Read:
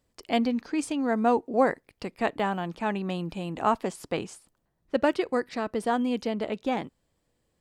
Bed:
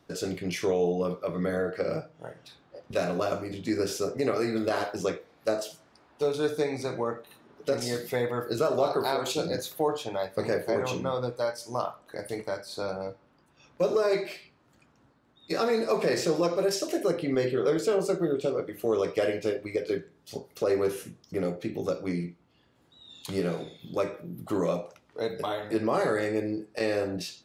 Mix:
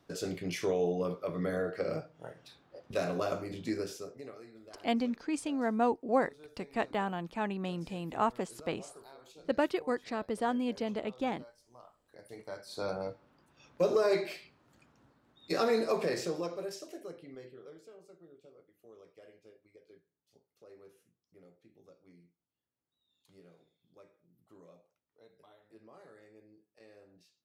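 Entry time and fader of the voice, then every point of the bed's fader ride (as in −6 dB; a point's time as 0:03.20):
4.55 s, −5.5 dB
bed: 0:03.66 −4.5 dB
0:04.52 −26 dB
0:11.79 −26 dB
0:12.88 −2.5 dB
0:15.77 −2.5 dB
0:18.01 −30 dB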